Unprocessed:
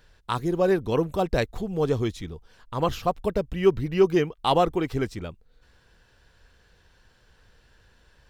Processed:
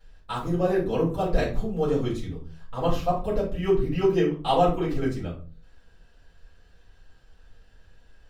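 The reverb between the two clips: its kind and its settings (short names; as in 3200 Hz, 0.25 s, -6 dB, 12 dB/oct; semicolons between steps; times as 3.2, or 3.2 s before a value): shoebox room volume 210 m³, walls furnished, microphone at 6.3 m; gain -13.5 dB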